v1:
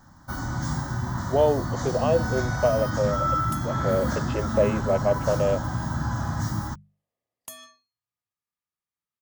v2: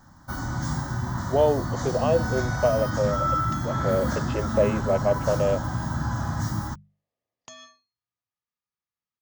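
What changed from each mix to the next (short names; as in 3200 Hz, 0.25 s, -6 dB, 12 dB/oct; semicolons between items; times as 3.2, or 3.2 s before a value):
second sound: add steep low-pass 6800 Hz 96 dB/oct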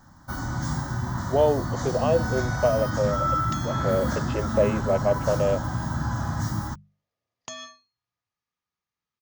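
second sound +7.0 dB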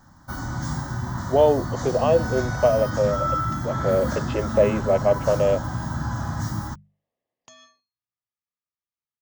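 speech +3.5 dB; second sound -11.5 dB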